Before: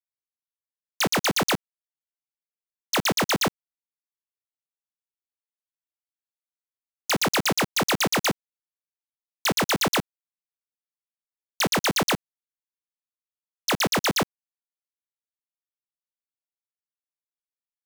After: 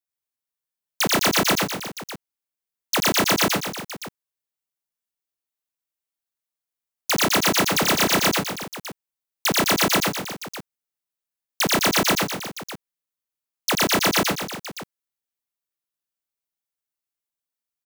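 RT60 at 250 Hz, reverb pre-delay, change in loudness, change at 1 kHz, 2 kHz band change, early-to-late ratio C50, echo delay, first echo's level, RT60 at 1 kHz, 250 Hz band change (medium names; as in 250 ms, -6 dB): no reverb, no reverb, +3.5 dB, +3.5 dB, +3.5 dB, no reverb, 88 ms, -3.5 dB, no reverb, +3.5 dB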